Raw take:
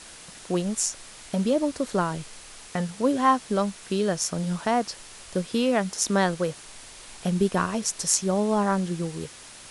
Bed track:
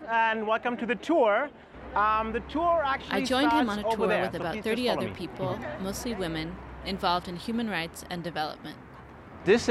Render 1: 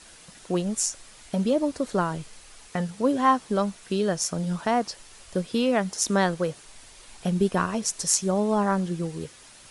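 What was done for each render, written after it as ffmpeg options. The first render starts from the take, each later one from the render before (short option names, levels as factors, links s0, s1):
-af "afftdn=nr=6:nf=-45"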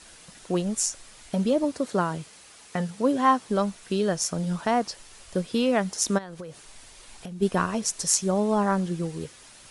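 -filter_complex "[0:a]asettb=1/sr,asplit=3[s0][s1][s2];[s0]atrim=end=1.644[s3];[s1]atrim=start=1.64:end=3.46,asetpts=PTS-STARTPTS,afade=t=in:d=0.004:c=qsin,afade=t=out:st=1.816:d=0.004:c=qsin,highpass=95[s4];[s2]atrim=start=3.456[s5];[s3][s4]acrossfade=d=0.004:c1=hsin:c2=qsin[s6];[s6][s5]acrossfade=d=0.004:c1=qsin:c2=hsin,asplit=3[s7][s8][s9];[s7]afade=t=out:st=6.17:d=0.02[s10];[s8]acompressor=threshold=0.02:ratio=12:attack=3.2:release=140:knee=1:detection=peak,afade=t=in:st=6.17:d=0.02,afade=t=out:st=7.41:d=0.02[s11];[s9]afade=t=in:st=7.41:d=0.02[s12];[s10][s11][s12]amix=inputs=3:normalize=0"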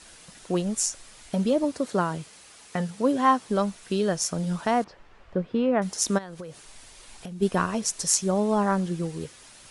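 -filter_complex "[0:a]asettb=1/sr,asplit=3[s0][s1][s2];[s0]atrim=end=4.844[s3];[s1]atrim=start=4.84:end=5.82,asetpts=PTS-STARTPTS,afade=t=in:d=0.004:c=qsin,afade=t=out:st=0.976:d=0.004:c=qsin,lowpass=1700[s4];[s2]atrim=start=5.816[s5];[s3][s4]acrossfade=d=0.004:c1=hsin:c2=qsin[s6];[s6][s5]acrossfade=d=0.004:c1=qsin:c2=hsin"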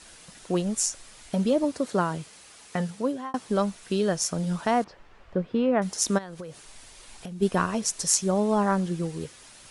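-filter_complex "[0:a]asplit=2[s0][s1];[s0]atrim=end=3.34,asetpts=PTS-STARTPTS,afade=t=out:st=2.9:d=0.44[s2];[s1]atrim=start=3.34,asetpts=PTS-STARTPTS,afade=t=in:d=0.004:c=hsin[s3];[s2][s3]concat=n=2:v=0:a=1"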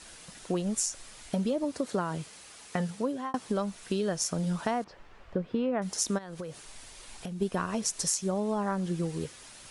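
-af "acompressor=threshold=0.0501:ratio=6"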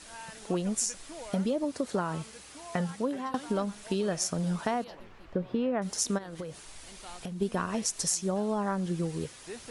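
-filter_complex "[1:a]volume=0.0841[s0];[0:a][s0]amix=inputs=2:normalize=0"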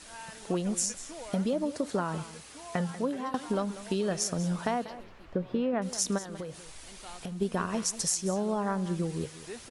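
-af "aecho=1:1:191:0.178"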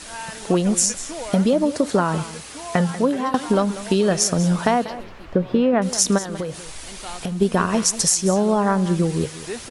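-af "volume=3.76,alimiter=limit=0.794:level=0:latency=1"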